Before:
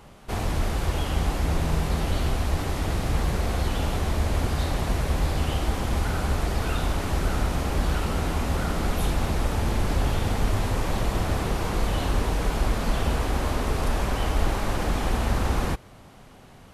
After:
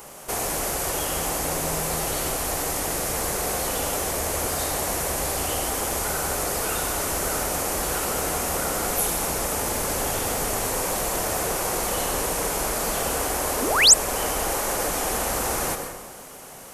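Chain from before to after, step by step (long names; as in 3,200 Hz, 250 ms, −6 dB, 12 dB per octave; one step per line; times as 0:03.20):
drawn EQ curve 100 Hz 0 dB, 150 Hz +5 dB, 230 Hz +6 dB, 480 Hz +15 dB, 2,200 Hz +5 dB, 3,800 Hz −1 dB, 6,600 Hz +7 dB
dense smooth reverb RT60 0.92 s, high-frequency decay 0.8×, pre-delay 80 ms, DRR 6 dB
sound drawn into the spectrogram rise, 0:13.62–0:13.94, 220–8,800 Hz −14 dBFS
first-order pre-emphasis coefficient 0.9
in parallel at +2 dB: downward compressor, threshold −44 dBFS, peak gain reduction 26 dB
on the sum: level +5 dB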